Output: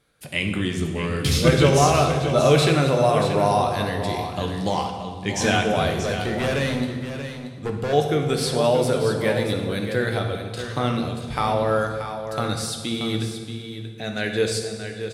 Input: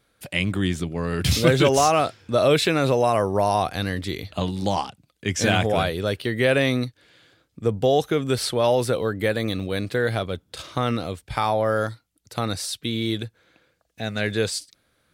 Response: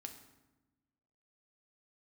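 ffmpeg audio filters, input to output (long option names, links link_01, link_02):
-filter_complex "[0:a]asettb=1/sr,asplit=3[link_01][link_02][link_03];[link_01]atrim=end=5.904[link_04];[link_02]atrim=start=5.9:end=7.93,asetpts=PTS-STARTPTS,afade=type=in:duration=0.004:curve=qsin,afade=type=out:start_time=2.026:duration=0.004:curve=qsin,volume=21dB,asoftclip=hard,volume=-21dB[link_05];[link_03]atrim=start=7.926[link_06];[link_04][link_05]acrossfade=duration=0.004:curve1=hsin:curve2=qsin[link_07];[link_07][link_06]acrossfade=duration=0.004:curve1=qsin:curve2=hsin,aecho=1:1:631:0.335[link_08];[1:a]atrim=start_sample=2205,asetrate=24255,aresample=44100[link_09];[link_08][link_09]afir=irnorm=-1:irlink=0,volume=1.5dB"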